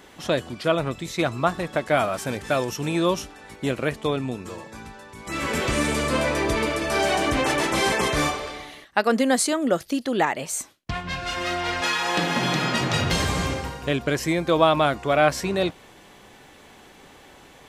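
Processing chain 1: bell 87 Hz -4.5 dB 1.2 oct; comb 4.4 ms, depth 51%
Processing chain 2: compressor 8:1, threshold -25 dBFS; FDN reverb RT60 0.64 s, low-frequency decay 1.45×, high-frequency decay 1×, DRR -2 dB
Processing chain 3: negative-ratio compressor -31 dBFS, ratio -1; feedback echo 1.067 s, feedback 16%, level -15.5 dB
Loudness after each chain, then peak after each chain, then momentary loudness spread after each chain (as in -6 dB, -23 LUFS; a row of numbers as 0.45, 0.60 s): -23.0, -24.5, -30.0 LUFS; -2.0, -10.0, -9.5 dBFS; 10, 12, 9 LU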